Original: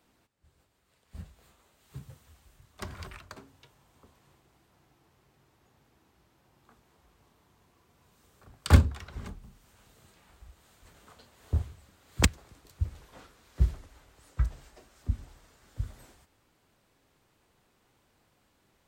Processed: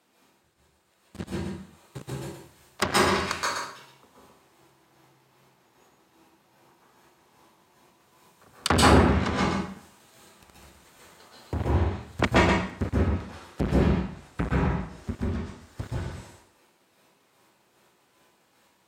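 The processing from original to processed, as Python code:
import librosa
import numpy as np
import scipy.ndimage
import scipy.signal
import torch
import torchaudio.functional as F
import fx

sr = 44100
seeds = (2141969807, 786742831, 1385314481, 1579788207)

y = fx.leveller(x, sr, passes=3)
y = fx.chopper(y, sr, hz=2.5, depth_pct=60, duty_pct=35)
y = y + 10.0 ** (-7.0 / 20.0) * np.pad(y, (int(120 * sr / 1000.0), 0))[:len(y)]
y = 10.0 ** (-20.0 / 20.0) * np.tanh(y / 10.0 ** (-20.0 / 20.0))
y = fx.env_lowpass_down(y, sr, base_hz=2500.0, full_db=-26.0)
y = scipy.signal.sosfilt(scipy.signal.butter(2, 110.0, 'highpass', fs=sr, output='sos'), y)
y = fx.low_shelf(y, sr, hz=170.0, db=-8.0)
y = fx.rev_plate(y, sr, seeds[0], rt60_s=0.61, hf_ratio=0.85, predelay_ms=120, drr_db=-6.5)
y = y * librosa.db_to_amplitude(8.5)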